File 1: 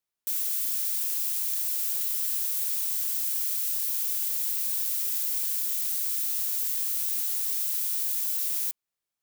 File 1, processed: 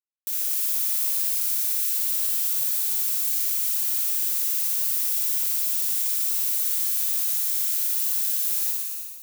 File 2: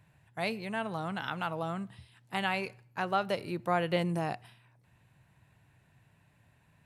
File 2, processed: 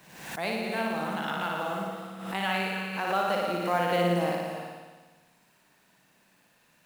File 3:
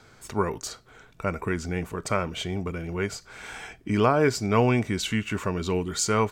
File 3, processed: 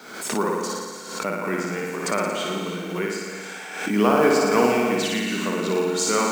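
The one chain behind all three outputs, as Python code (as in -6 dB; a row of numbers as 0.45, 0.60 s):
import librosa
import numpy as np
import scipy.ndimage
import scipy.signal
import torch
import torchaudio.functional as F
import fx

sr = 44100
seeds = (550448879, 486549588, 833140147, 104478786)

p1 = scipy.signal.sosfilt(scipy.signal.butter(6, 180.0, 'highpass', fs=sr, output='sos'), x)
p2 = fx.quant_companded(p1, sr, bits=6)
p3 = p2 + fx.room_flutter(p2, sr, wall_m=9.9, rt60_s=1.3, dry=0)
p4 = fx.rev_gated(p3, sr, seeds[0], gate_ms=350, shape='rising', drr_db=7.0)
y = fx.pre_swell(p4, sr, db_per_s=63.0)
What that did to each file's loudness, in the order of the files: +4.0, +4.0, +3.5 LU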